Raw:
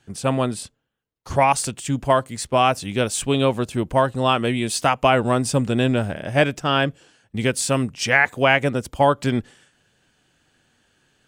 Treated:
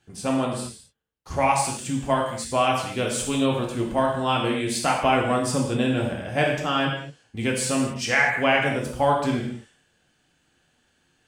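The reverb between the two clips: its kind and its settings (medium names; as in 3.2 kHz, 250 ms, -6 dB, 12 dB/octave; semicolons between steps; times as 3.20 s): gated-style reverb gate 270 ms falling, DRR -1.5 dB; trim -6.5 dB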